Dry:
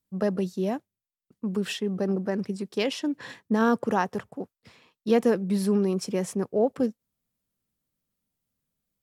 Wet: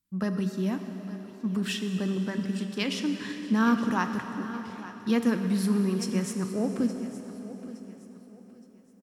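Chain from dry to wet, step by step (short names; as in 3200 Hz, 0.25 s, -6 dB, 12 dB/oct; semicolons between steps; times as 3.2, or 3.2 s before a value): band shelf 560 Hz -10 dB 1.3 oct; feedback echo 0.868 s, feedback 33%, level -16 dB; plate-style reverb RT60 4.4 s, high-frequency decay 0.85×, pre-delay 0 ms, DRR 6 dB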